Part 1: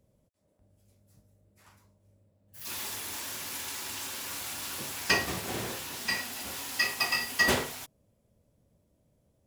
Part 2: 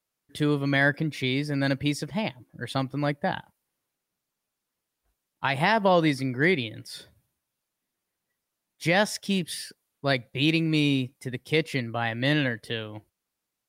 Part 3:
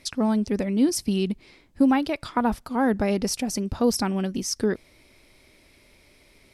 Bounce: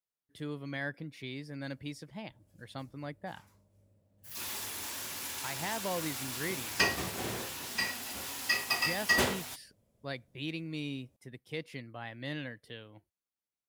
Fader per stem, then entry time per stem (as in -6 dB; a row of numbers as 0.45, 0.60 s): -2.0 dB, -15.0 dB, off; 1.70 s, 0.00 s, off